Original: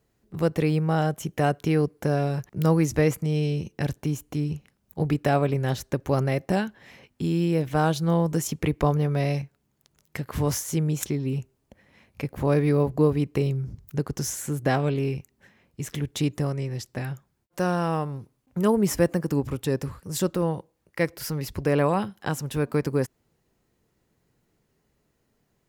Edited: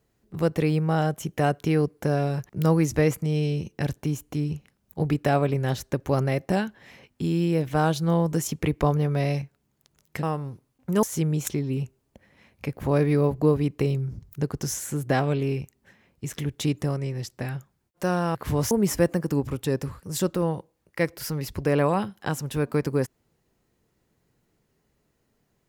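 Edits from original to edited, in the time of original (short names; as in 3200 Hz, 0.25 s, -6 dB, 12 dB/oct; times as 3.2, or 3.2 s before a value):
10.23–10.59 swap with 17.91–18.71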